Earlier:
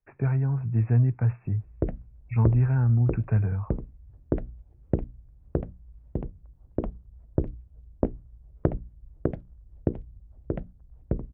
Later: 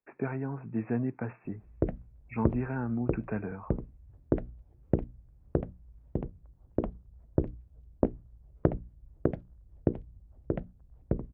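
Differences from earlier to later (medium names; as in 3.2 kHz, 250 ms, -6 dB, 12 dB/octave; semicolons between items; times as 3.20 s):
speech: add resonant low shelf 160 Hz -14 dB, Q 1.5; master: add bass shelf 80 Hz -7 dB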